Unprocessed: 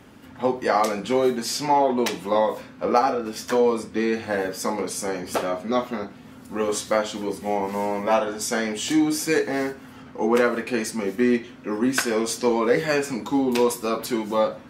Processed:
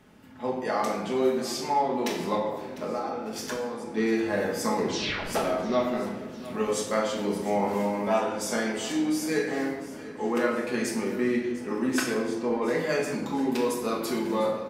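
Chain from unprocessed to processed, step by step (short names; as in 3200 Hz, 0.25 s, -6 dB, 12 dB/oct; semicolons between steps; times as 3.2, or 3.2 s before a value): 2.35–3.97 compressor 10:1, threshold -29 dBFS, peak gain reduction 16 dB; 12.14–12.62 LPF 1300 Hz 6 dB/oct; vocal rider within 4 dB 0.5 s; 4.77 tape stop 0.49 s; feedback echo 0.701 s, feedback 58%, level -17 dB; shoebox room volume 530 m³, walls mixed, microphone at 1.4 m; gain -7 dB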